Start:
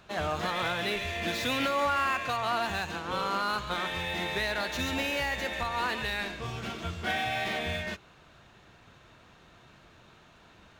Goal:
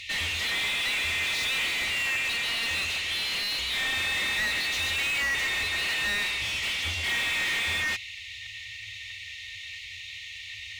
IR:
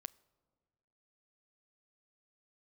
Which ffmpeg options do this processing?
-filter_complex "[0:a]afftfilt=real='re*(1-between(b*sr/4096,110,1800))':imag='im*(1-between(b*sr/4096,110,1800))':win_size=4096:overlap=0.75,asplit=2[s0][s1];[s1]highpass=f=720:p=1,volume=39.8,asoftclip=type=tanh:threshold=0.1[s2];[s0][s2]amix=inputs=2:normalize=0,lowpass=f=3300:p=1,volume=0.501"

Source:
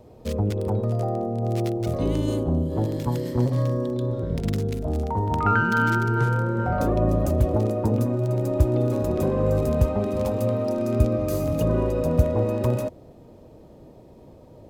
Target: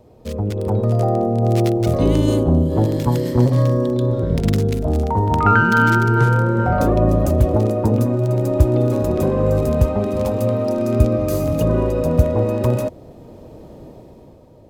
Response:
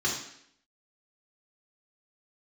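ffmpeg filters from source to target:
-af "dynaudnorm=f=110:g=13:m=2.82"

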